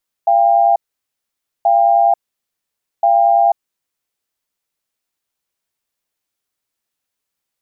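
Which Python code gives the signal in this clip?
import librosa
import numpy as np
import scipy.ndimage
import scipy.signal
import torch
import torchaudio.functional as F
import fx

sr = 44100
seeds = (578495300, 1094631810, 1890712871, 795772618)

y = fx.cadence(sr, length_s=3.27, low_hz=688.0, high_hz=798.0, on_s=0.49, off_s=0.89, level_db=-11.5)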